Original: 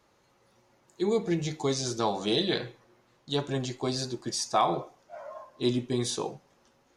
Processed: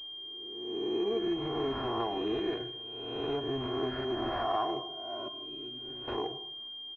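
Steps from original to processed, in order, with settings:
peak hold with a rise ahead of every peak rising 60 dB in 1.20 s
comb filter 2.8 ms, depth 74%
downward compressor 2.5 to 1, threshold −28 dBFS, peak gain reduction 9.5 dB
0:05.28–0:06.08: tuned comb filter 150 Hz, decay 0.52 s, harmonics all, mix 90%
convolution reverb, pre-delay 113 ms, DRR 15 dB
switching amplifier with a slow clock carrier 3,200 Hz
level −3 dB

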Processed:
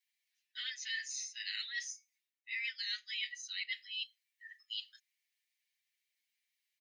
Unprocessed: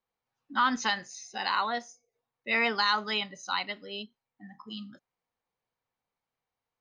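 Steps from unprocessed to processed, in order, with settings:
Butterworth high-pass 1,800 Hz 72 dB per octave
comb filter 7.3 ms, depth 99%
reversed playback
downward compressor 8 to 1, threshold −42 dBFS, peak gain reduction 20 dB
reversed playback
level +4.5 dB

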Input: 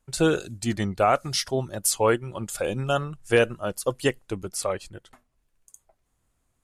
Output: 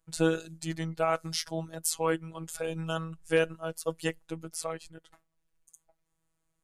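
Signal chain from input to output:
phases set to zero 162 Hz
level −4.5 dB

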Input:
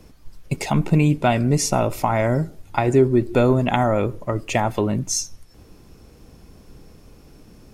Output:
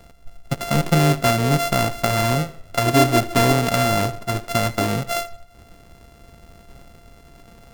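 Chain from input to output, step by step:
samples sorted by size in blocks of 64 samples
tape delay 76 ms, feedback 49%, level −18 dB, low-pass 5,900 Hz

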